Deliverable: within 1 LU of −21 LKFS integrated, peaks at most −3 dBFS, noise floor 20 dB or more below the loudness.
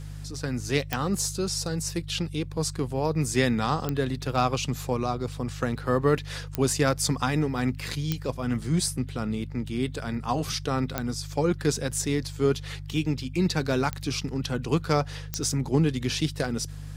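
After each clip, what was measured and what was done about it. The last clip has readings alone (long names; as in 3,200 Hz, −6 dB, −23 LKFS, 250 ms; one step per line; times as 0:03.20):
number of clicks 7; mains hum 50 Hz; hum harmonics up to 150 Hz; level of the hum −36 dBFS; integrated loudness −27.5 LKFS; sample peak −8.0 dBFS; target loudness −21.0 LKFS
→ click removal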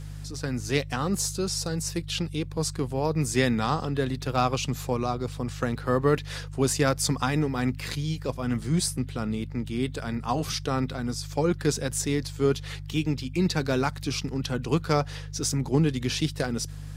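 number of clicks 0; mains hum 50 Hz; hum harmonics up to 150 Hz; level of the hum −36 dBFS
→ hum removal 50 Hz, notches 3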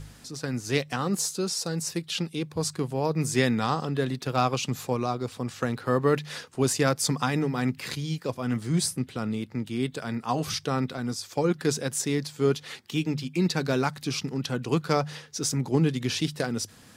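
mains hum none found; integrated loudness −28.0 LKFS; sample peak −8.0 dBFS; target loudness −21.0 LKFS
→ level +7 dB
brickwall limiter −3 dBFS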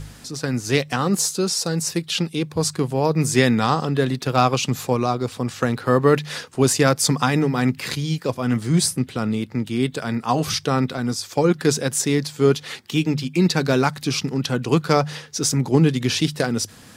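integrated loudness −21.0 LKFS; sample peak −3.0 dBFS; background noise floor −45 dBFS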